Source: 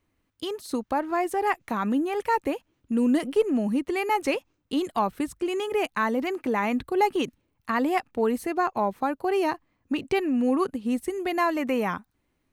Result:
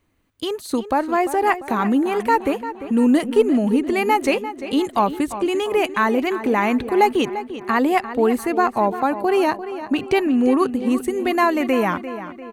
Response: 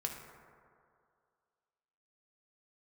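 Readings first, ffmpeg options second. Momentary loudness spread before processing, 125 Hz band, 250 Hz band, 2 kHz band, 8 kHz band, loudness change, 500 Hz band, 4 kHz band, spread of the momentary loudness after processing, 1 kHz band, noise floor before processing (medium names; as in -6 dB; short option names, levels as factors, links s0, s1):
8 LU, +7.0 dB, +7.0 dB, +6.5 dB, +6.5 dB, +6.5 dB, +7.0 dB, +6.5 dB, 7 LU, +7.0 dB, -74 dBFS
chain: -filter_complex "[0:a]bandreject=f=5300:w=11,asplit=2[s0][s1];[s1]adelay=346,lowpass=f=4300:p=1,volume=0.251,asplit=2[s2][s3];[s3]adelay=346,lowpass=f=4300:p=1,volume=0.5,asplit=2[s4][s5];[s5]adelay=346,lowpass=f=4300:p=1,volume=0.5,asplit=2[s6][s7];[s7]adelay=346,lowpass=f=4300:p=1,volume=0.5,asplit=2[s8][s9];[s9]adelay=346,lowpass=f=4300:p=1,volume=0.5[s10];[s0][s2][s4][s6][s8][s10]amix=inputs=6:normalize=0,volume=2.11"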